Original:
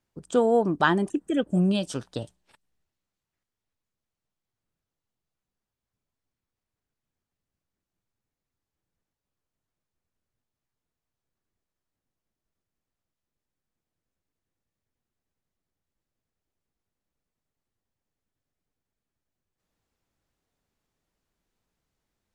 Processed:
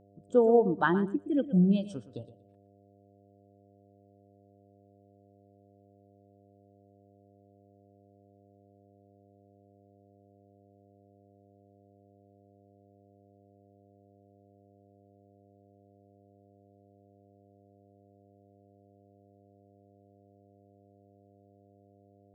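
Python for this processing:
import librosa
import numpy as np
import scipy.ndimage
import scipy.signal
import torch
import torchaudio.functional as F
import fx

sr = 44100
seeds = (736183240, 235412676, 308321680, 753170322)

y = fx.echo_feedback(x, sr, ms=118, feedback_pct=29, wet_db=-10.0)
y = fx.dmg_buzz(y, sr, base_hz=100.0, harmonics=7, level_db=-45.0, tilt_db=-1, odd_only=False)
y = fx.spectral_expand(y, sr, expansion=1.5)
y = y * librosa.db_to_amplitude(-4.5)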